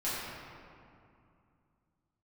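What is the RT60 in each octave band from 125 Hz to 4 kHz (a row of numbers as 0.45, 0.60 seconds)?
3.3, 3.1, 2.5, 2.5, 2.0, 1.3 seconds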